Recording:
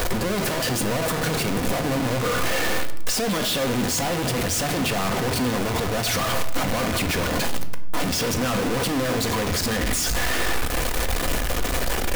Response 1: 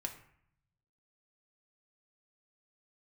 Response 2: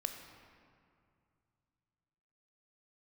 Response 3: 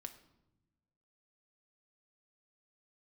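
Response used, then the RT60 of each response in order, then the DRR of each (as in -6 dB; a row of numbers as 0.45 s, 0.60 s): 3; 0.65 s, 2.4 s, no single decay rate; 2.5 dB, 5.0 dB, 6.0 dB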